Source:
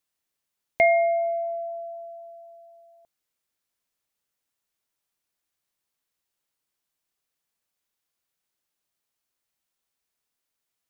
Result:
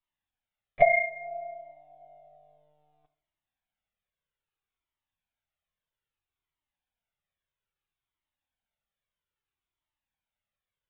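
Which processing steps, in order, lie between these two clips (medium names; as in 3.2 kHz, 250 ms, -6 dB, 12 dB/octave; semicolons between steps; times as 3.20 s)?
monotone LPC vocoder at 8 kHz 150 Hz; two-slope reverb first 0.53 s, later 2.4 s, from -27 dB, DRR 10.5 dB; Shepard-style flanger falling 0.61 Hz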